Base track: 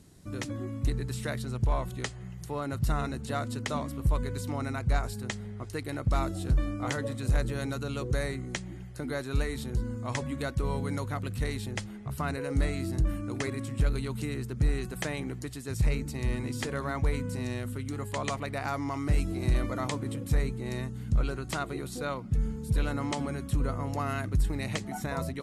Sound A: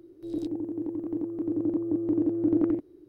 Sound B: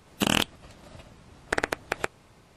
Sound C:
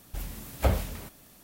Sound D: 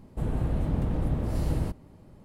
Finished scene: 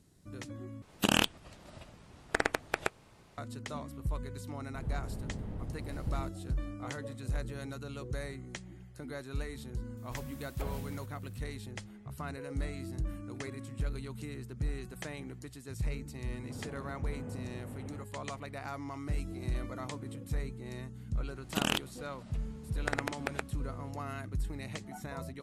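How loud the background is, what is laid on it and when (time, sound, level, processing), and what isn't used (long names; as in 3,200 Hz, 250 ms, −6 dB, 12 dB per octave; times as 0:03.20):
base track −8.5 dB
0:00.82: overwrite with B −3.5 dB
0:04.57: mix in D −13.5 dB
0:09.97: mix in C −11 dB + brickwall limiter −18.5 dBFS
0:16.32: mix in D −12 dB + single-sideband voice off tune −60 Hz 160–2,700 Hz
0:21.35: mix in B −7.5 dB
not used: A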